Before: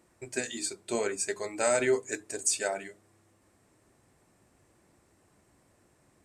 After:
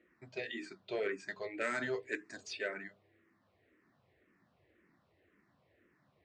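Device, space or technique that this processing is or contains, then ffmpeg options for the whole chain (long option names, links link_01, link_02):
barber-pole phaser into a guitar amplifier: -filter_complex "[0:a]asplit=2[link_01][link_02];[link_02]afreqshift=-1.9[link_03];[link_01][link_03]amix=inputs=2:normalize=1,asoftclip=type=tanh:threshold=-25dB,highpass=83,equalizer=frequency=110:width_type=q:width=4:gain=-4,equalizer=frequency=850:width_type=q:width=4:gain=-5,equalizer=frequency=1900:width_type=q:width=4:gain=7,lowpass=frequency=3900:width=0.5412,lowpass=frequency=3900:width=1.3066,asettb=1/sr,asplit=3[link_04][link_05][link_06];[link_04]atrim=end=1.614[link_07];[link_05]atrim=start=1.61:end=2.53,asetpts=PTS-STARTPTS,afade=type=in:duration=0.004:curve=qsin,afade=type=out:start_time=0.916:duration=0.004:curve=qsin,aemphasis=mode=production:type=50kf[link_08];[link_06]atrim=start=2.526[link_09];[link_07][link_08]acrossfade=duration=0.004:curve1=hsin:curve2=qsin[link_10];[link_10][link_09]acrossfade=duration=0.004:curve1=qsin:curve2=hsin,volume=-2.5dB"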